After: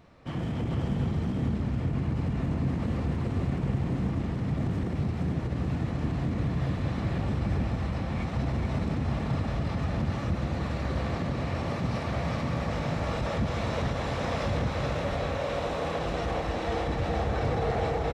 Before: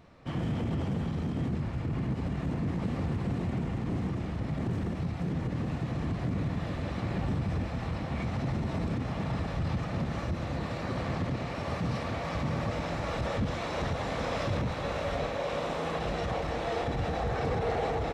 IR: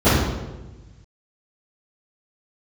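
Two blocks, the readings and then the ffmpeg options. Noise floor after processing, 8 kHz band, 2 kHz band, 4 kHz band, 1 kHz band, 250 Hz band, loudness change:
-33 dBFS, n/a, +1.0 dB, +1.0 dB, +1.0 dB, +2.0 dB, +2.5 dB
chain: -filter_complex "[0:a]aecho=1:1:428:0.562,asplit=2[a][b];[1:a]atrim=start_sample=2205,adelay=149[c];[b][c]afir=irnorm=-1:irlink=0,volume=-40dB[d];[a][d]amix=inputs=2:normalize=0"

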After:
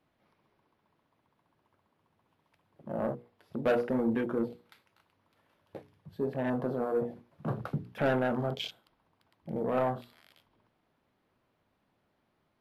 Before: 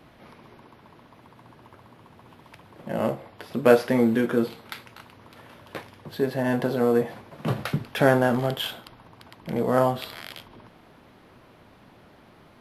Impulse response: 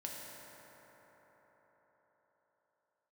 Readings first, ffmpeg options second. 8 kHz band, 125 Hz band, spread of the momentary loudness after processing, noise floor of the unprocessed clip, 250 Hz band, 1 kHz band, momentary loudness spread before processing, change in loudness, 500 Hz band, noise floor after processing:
under -15 dB, -8.0 dB, 20 LU, -54 dBFS, -8.0 dB, -8.0 dB, 21 LU, -8.5 dB, -8.5 dB, -76 dBFS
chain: -filter_complex "[0:a]afwtdn=0.0282,bandreject=f=60:t=h:w=6,bandreject=f=120:t=h:w=6,bandreject=f=180:t=h:w=6,bandreject=f=240:t=h:w=6,bandreject=f=300:t=h:w=6,bandreject=f=360:t=h:w=6,bandreject=f=420:t=h:w=6,bandreject=f=480:t=h:w=6,acrossover=split=5400[a][b];[a]asoftclip=type=tanh:threshold=-14.5dB[c];[c][b]amix=inputs=2:normalize=0,volume=-5.5dB"

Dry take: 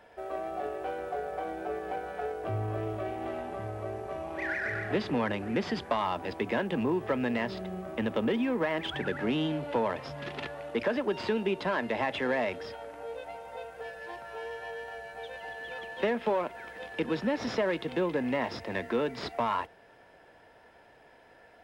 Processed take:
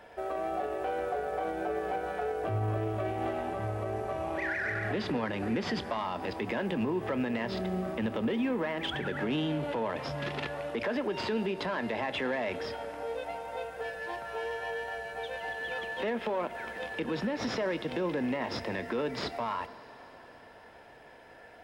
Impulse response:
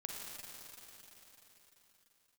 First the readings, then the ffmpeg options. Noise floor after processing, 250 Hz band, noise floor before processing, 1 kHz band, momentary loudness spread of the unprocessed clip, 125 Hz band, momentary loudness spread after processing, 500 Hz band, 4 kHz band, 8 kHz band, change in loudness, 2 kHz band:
-52 dBFS, -1.0 dB, -57 dBFS, -0.5 dB, 11 LU, +1.5 dB, 7 LU, -1.0 dB, +0.5 dB, n/a, -0.5 dB, 0.0 dB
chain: -filter_complex "[0:a]alimiter=level_in=3.5dB:limit=-24dB:level=0:latency=1:release=80,volume=-3.5dB,asplit=2[a][b];[1:a]atrim=start_sample=2205,adelay=27[c];[b][c]afir=irnorm=-1:irlink=0,volume=-13dB[d];[a][d]amix=inputs=2:normalize=0,volume=4dB"

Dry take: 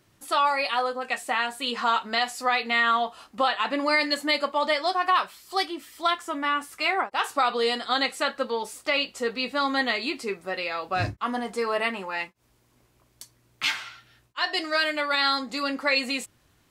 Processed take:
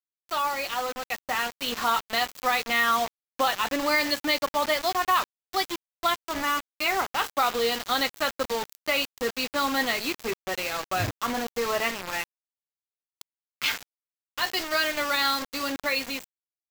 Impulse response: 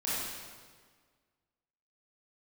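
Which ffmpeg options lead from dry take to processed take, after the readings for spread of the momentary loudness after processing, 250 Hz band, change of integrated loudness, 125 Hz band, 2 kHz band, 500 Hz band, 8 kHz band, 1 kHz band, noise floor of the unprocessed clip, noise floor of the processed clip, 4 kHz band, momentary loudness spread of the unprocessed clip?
7 LU, -1.5 dB, -1.0 dB, -0.5 dB, -1.0 dB, -1.5 dB, +6.0 dB, -1.5 dB, -65 dBFS, under -85 dBFS, -1.0 dB, 7 LU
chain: -af "acrusher=bits=4:mix=0:aa=0.000001,equalizer=f=9.5k:w=6.8:g=-14.5,dynaudnorm=f=270:g=9:m=4dB,volume=-5dB"

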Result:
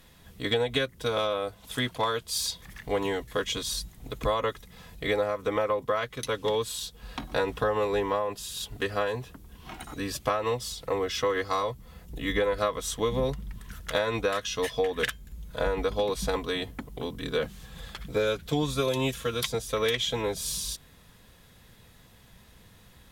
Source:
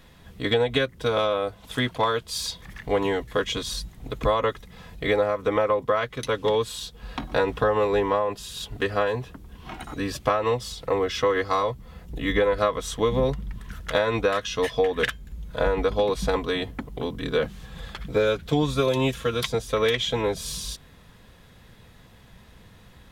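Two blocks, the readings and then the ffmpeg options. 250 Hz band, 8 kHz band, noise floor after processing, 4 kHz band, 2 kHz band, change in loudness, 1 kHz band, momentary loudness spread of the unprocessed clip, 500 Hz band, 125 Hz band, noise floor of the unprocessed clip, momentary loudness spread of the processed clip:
-5.0 dB, +1.5 dB, -56 dBFS, -1.5 dB, -3.5 dB, -4.0 dB, -4.5 dB, 13 LU, -5.0 dB, -5.0 dB, -51 dBFS, 12 LU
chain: -af "aemphasis=mode=production:type=cd,volume=-4.5dB"

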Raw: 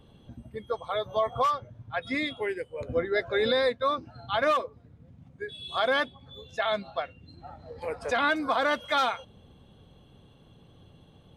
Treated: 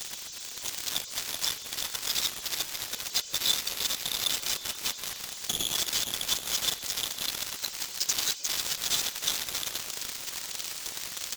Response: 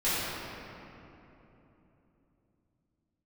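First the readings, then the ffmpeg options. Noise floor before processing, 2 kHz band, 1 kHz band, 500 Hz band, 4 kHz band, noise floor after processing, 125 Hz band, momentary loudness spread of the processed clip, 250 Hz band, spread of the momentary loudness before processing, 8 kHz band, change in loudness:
-57 dBFS, -7.0 dB, -14.0 dB, -19.5 dB, +8.0 dB, -42 dBFS, -6.5 dB, 8 LU, -12.5 dB, 15 LU, n/a, -1.0 dB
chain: -filter_complex "[0:a]aeval=exprs='val(0)+0.5*0.0106*sgn(val(0))':c=same,aecho=1:1:350|560|686|761.6|807:0.631|0.398|0.251|0.158|0.1,aresample=16000,asoftclip=type=tanh:threshold=-24.5dB,aresample=44100,flanger=delay=4.5:depth=5.2:regen=-18:speed=2:shape=sinusoidal,tiltshelf=f=750:g=-5.5,aecho=1:1:2:0.88,aexciter=amount=9.3:drive=4.1:freq=2.9k,acrossover=split=2500|5100[a][b][c];[a]acompressor=threshold=-41dB:ratio=4[d];[b]acompressor=threshold=-32dB:ratio=4[e];[c]acompressor=threshold=-36dB:ratio=4[f];[d][e][f]amix=inputs=3:normalize=0,crystalizer=i=6.5:c=0,afftfilt=real='hypot(re,im)*cos(2*PI*random(0))':imag='hypot(re,im)*sin(2*PI*random(1))':win_size=512:overlap=0.75,aeval=exprs='0.355*(cos(1*acos(clip(val(0)/0.355,-1,1)))-cos(1*PI/2))+0.0891*(cos(7*acos(clip(val(0)/0.355,-1,1)))-cos(7*PI/2))':c=same,volume=-6dB"

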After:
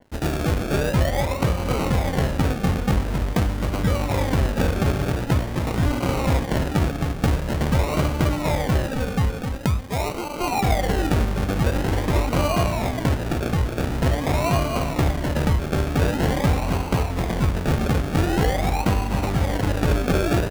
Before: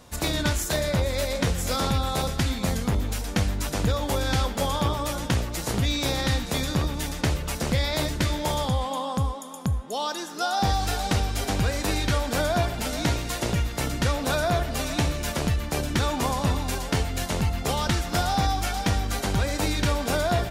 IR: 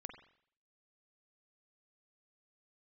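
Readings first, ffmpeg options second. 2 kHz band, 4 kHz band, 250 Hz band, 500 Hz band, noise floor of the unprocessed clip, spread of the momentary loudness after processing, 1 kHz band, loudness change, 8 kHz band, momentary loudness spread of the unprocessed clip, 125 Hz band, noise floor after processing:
+1.5 dB, -4.0 dB, +5.0 dB, +4.0 dB, -34 dBFS, 3 LU, +1.5 dB, +3.5 dB, -4.5 dB, 4 LU, +5.0 dB, -29 dBFS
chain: -filter_complex "[0:a]equalizer=f=120:t=o:w=1.7:g=2.5,areverse,acompressor=mode=upward:threshold=-28dB:ratio=2.5,areverse,aecho=1:1:263:0.501,asplit=2[a][b];[1:a]atrim=start_sample=2205[c];[b][c]afir=irnorm=-1:irlink=0,volume=-3dB[d];[a][d]amix=inputs=2:normalize=0,acrusher=samples=35:mix=1:aa=0.000001:lfo=1:lforange=21:lforate=0.46,bandreject=f=102.1:t=h:w=4,bandreject=f=204.2:t=h:w=4,bandreject=f=306.3:t=h:w=4,bandreject=f=408.4:t=h:w=4,bandreject=f=510.5:t=h:w=4,bandreject=f=612.6:t=h:w=4,bandreject=f=714.7:t=h:w=4,bandreject=f=816.8:t=h:w=4,bandreject=f=918.9:t=h:w=4,bandreject=f=1.021k:t=h:w=4,bandreject=f=1.1231k:t=h:w=4,bandreject=f=1.2252k:t=h:w=4,bandreject=f=1.3273k:t=h:w=4,bandreject=f=1.4294k:t=h:w=4,bandreject=f=1.5315k:t=h:w=4,bandreject=f=1.6336k:t=h:w=4,bandreject=f=1.7357k:t=h:w=4,bandreject=f=1.8378k:t=h:w=4,bandreject=f=1.9399k:t=h:w=4,bandreject=f=2.042k:t=h:w=4,bandreject=f=2.1441k:t=h:w=4,bandreject=f=2.2462k:t=h:w=4,bandreject=f=2.3483k:t=h:w=4,bandreject=f=2.4504k:t=h:w=4,bandreject=f=2.5525k:t=h:w=4,bandreject=f=2.6546k:t=h:w=4,bandreject=f=2.7567k:t=h:w=4,bandreject=f=2.8588k:t=h:w=4,bandreject=f=2.9609k:t=h:w=4,bandreject=f=3.063k:t=h:w=4,bandreject=f=3.1651k:t=h:w=4,bandreject=f=3.2672k:t=h:w=4,bandreject=f=3.3693k:t=h:w=4,bandreject=f=3.4714k:t=h:w=4,bandreject=f=3.5735k:t=h:w=4,bandreject=f=3.6756k:t=h:w=4,bandreject=f=3.7777k:t=h:w=4,bandreject=f=3.8798k:t=h:w=4,bandreject=f=3.9819k:t=h:w=4,bandreject=f=4.084k:t=h:w=4,aeval=exprs='sgn(val(0))*max(abs(val(0))-0.00562,0)':c=same,adynamicequalizer=threshold=0.01:dfrequency=3400:dqfactor=0.7:tfrequency=3400:tqfactor=0.7:attack=5:release=100:ratio=0.375:range=2:mode=cutabove:tftype=highshelf"

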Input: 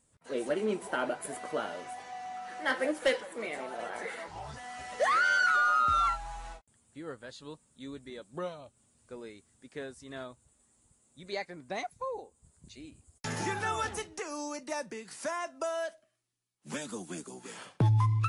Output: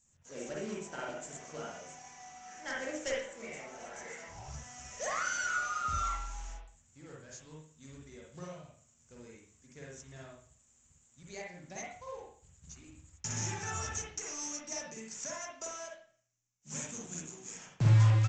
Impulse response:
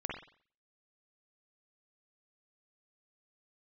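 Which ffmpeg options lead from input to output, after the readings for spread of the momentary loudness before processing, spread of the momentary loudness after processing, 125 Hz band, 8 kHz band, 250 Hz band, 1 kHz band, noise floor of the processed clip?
21 LU, 20 LU, +2.0 dB, +6.0 dB, -5.5 dB, -8.5 dB, -68 dBFS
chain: -filter_complex "[0:a]firequalizer=gain_entry='entry(120,0);entry(300,-12);entry(740,-10);entry(1200,-12);entry(2500,-6);entry(4000,-14);entry(5800,11)':delay=0.05:min_phase=1,aresample=16000,acrusher=bits=3:mode=log:mix=0:aa=0.000001,aresample=44100[a];[1:a]atrim=start_sample=2205[b];[a][b]afir=irnorm=-1:irlink=0"

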